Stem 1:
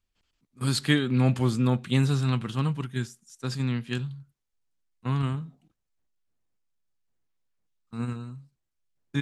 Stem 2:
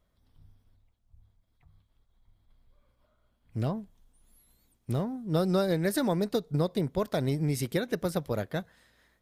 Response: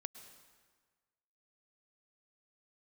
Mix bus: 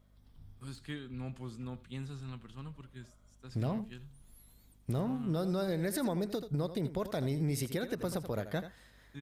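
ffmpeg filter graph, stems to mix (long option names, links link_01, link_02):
-filter_complex "[0:a]deesser=0.65,volume=-19dB,asplit=2[link_01][link_02];[link_02]volume=-18.5dB[link_03];[1:a]acompressor=threshold=-31dB:ratio=4,aeval=exprs='val(0)+0.000562*(sin(2*PI*50*n/s)+sin(2*PI*2*50*n/s)/2+sin(2*PI*3*50*n/s)/3+sin(2*PI*4*50*n/s)/4+sin(2*PI*5*50*n/s)/5)':channel_layout=same,volume=2dB,asplit=2[link_04][link_05];[link_05]volume=-14dB[link_06];[link_03][link_06]amix=inputs=2:normalize=0,aecho=0:1:83:1[link_07];[link_01][link_04][link_07]amix=inputs=3:normalize=0,alimiter=level_in=1dB:limit=-24dB:level=0:latency=1:release=66,volume=-1dB"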